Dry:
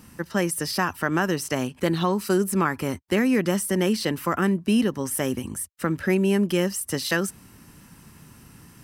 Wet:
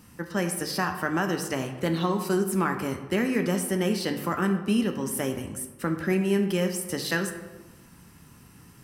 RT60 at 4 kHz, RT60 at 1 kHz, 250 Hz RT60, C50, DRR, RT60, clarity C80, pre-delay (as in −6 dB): 0.70 s, 1.2 s, 1.2 s, 8.0 dB, 5.0 dB, 1.2 s, 10.0 dB, 7 ms